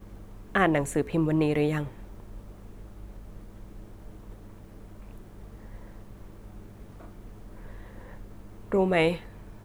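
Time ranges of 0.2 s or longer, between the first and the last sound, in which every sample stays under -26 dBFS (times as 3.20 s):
1.84–8.72 s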